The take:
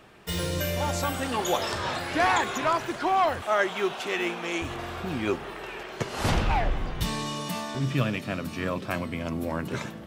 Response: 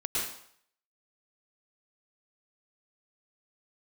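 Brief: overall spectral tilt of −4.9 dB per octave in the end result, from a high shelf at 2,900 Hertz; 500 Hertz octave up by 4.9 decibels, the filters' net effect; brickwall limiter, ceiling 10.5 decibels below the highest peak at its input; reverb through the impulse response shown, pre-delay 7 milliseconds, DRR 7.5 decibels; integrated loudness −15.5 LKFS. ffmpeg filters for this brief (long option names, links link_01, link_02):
-filter_complex "[0:a]equalizer=frequency=500:width_type=o:gain=7,highshelf=frequency=2900:gain=-7.5,alimiter=limit=-19.5dB:level=0:latency=1,asplit=2[link_01][link_02];[1:a]atrim=start_sample=2205,adelay=7[link_03];[link_02][link_03]afir=irnorm=-1:irlink=0,volume=-14.5dB[link_04];[link_01][link_04]amix=inputs=2:normalize=0,volume=14dB"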